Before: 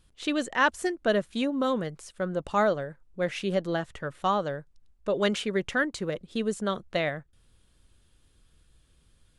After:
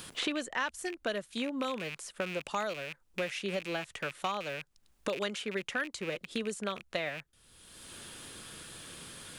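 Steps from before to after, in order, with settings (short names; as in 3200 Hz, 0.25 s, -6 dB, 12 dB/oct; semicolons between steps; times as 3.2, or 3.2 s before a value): rattling part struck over -43 dBFS, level -28 dBFS; tilt +2 dB/oct; three-band squash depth 100%; gain -7 dB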